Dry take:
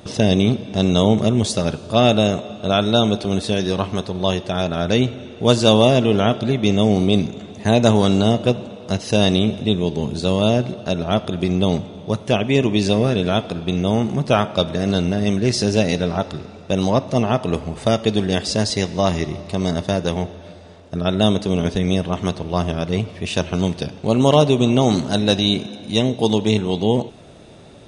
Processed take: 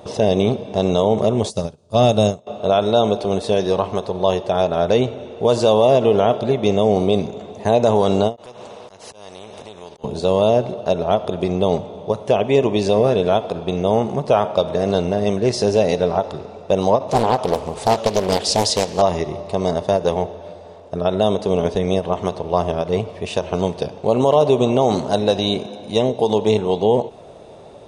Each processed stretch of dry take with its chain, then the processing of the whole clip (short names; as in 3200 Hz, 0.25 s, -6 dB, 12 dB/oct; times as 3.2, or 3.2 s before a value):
1.5–2.47 tone controls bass +11 dB, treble +12 dB + upward expander 2.5:1, over -25 dBFS
8.36–10.04 compressor, threshold -26 dBFS + auto swell 0.264 s + spectral compressor 2:1
17.09–19.02 high shelf 2900 Hz +11 dB + Doppler distortion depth 0.94 ms
whole clip: band shelf 660 Hz +10 dB; limiter -1 dBFS; ending taper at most 300 dB/s; gain -3.5 dB